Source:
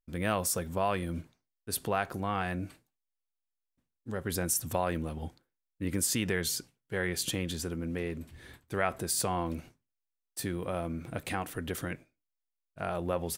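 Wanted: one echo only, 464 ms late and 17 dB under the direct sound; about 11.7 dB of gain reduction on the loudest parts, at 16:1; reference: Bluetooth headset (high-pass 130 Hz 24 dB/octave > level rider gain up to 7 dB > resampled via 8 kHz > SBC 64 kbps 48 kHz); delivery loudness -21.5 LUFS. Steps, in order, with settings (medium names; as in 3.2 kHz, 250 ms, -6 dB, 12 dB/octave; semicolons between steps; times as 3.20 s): compression 16:1, threshold -36 dBFS; high-pass 130 Hz 24 dB/octave; delay 464 ms -17 dB; level rider gain up to 7 dB; resampled via 8 kHz; trim +22.5 dB; SBC 64 kbps 48 kHz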